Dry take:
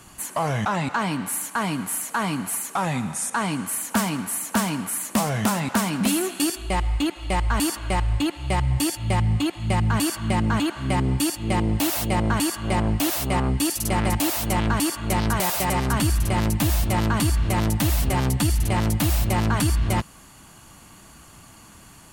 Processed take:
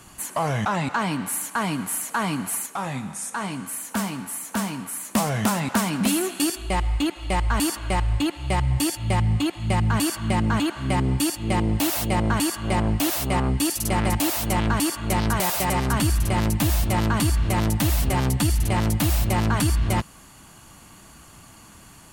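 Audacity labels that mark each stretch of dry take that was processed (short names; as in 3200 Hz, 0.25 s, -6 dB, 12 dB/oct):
2.660000	5.150000	resonator 67 Hz, decay 0.28 s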